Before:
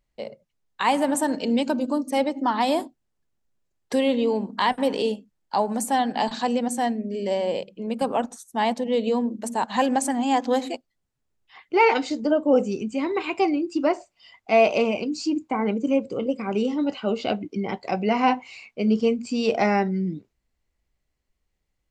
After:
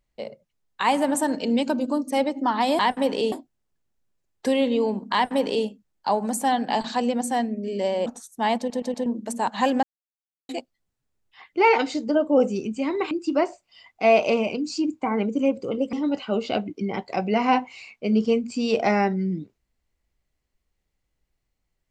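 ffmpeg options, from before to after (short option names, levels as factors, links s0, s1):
-filter_complex "[0:a]asplit=12[s0][s1][s2][s3][s4][s5][s6][s7][s8][s9][s10][s11];[s0]atrim=end=2.792[s12];[s1]atrim=start=4.598:end=5.132[s13];[s2]atrim=start=2.788:end=7.532[s14];[s3]atrim=start=8.218:end=8.862[s15];[s4]atrim=start=8.738:end=8.862[s16];[s5]atrim=start=8.738:end=8.862[s17];[s6]atrim=start=8.738:end=8.862[s18];[s7]atrim=start=9.218:end=9.99,asetpts=PTS-STARTPTS,afade=t=out:st=0.768:d=0.004:c=hsin[s19];[s8]atrim=start=9.99:end=10.65,asetpts=PTS-STARTPTS,volume=0[s20];[s9]atrim=start=10.65:end=13.272,asetpts=PTS-STARTPTS,afade=t=in:d=0.004:c=hsin[s21];[s10]atrim=start=13.588:end=16.412[s22];[s11]atrim=start=16.678[s23];[s12][s13]acrossfade=d=0.004:c1=hsin:c2=hsin[s24];[s24][s14]acrossfade=d=0.004:c1=hsin:c2=hsin[s25];[s25][s15]acrossfade=d=0.004:c1=hsin:c2=hsin[s26];[s26][s16]acrossfade=d=0.004:c1=hsin:c2=hsin[s27];[s27][s17]acrossfade=d=0.004:c1=hsin:c2=hsin[s28];[s28][s18]acrossfade=d=0.004:c1=hsin:c2=hsin[s29];[s19][s20][s21]concat=n=3:v=0:a=1[s30];[s29][s30]acrossfade=d=0.004:c1=hsin:c2=hsin[s31];[s31][s22]acrossfade=d=0.004:c1=hsin:c2=hsin[s32];[s32][s23]acrossfade=d=0.004:c1=hsin:c2=hsin"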